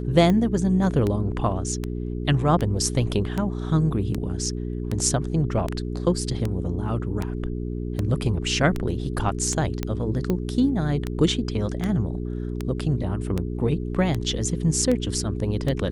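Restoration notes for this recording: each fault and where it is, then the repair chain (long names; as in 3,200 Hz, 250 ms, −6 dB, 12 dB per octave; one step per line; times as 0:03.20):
mains hum 60 Hz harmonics 7 −29 dBFS
scratch tick 78 rpm −13 dBFS
0:09.83: click −12 dBFS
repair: click removal
hum removal 60 Hz, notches 7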